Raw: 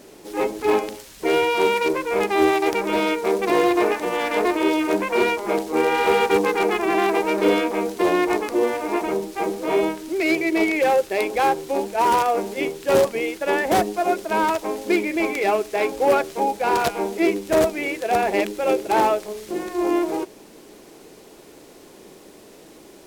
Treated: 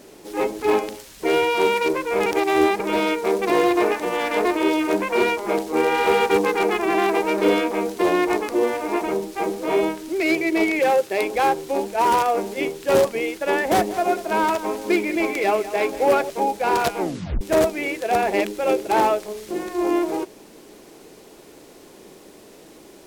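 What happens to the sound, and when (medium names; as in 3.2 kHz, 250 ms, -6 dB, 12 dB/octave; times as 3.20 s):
2.26–2.80 s: reverse
10.79–11.23 s: high-pass 97 Hz 24 dB/octave
13.58–16.30 s: bit-crushed delay 191 ms, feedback 35%, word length 7-bit, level -14 dB
17.00 s: tape stop 0.41 s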